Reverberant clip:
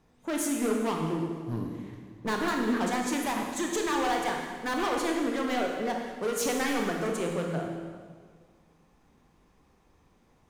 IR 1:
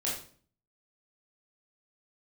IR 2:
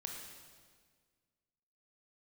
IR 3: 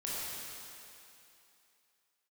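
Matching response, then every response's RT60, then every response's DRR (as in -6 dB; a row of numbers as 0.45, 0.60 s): 2; 0.45, 1.7, 2.8 s; -6.0, 0.5, -8.0 dB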